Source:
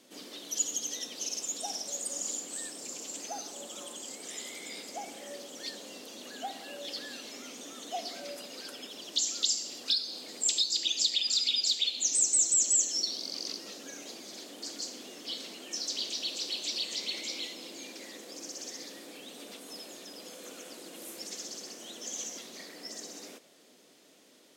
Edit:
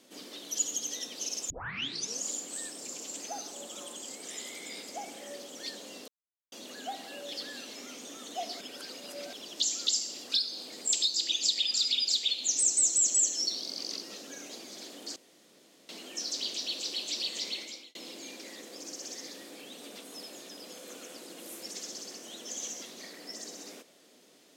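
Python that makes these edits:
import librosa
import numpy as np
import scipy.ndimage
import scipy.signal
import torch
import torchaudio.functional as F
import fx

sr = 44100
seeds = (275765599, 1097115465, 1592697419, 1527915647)

y = fx.edit(x, sr, fx.tape_start(start_s=1.5, length_s=0.74),
    fx.insert_silence(at_s=6.08, length_s=0.44),
    fx.reverse_span(start_s=8.17, length_s=0.72),
    fx.room_tone_fill(start_s=14.72, length_s=0.73),
    fx.fade_out_span(start_s=17.04, length_s=0.47), tone=tone)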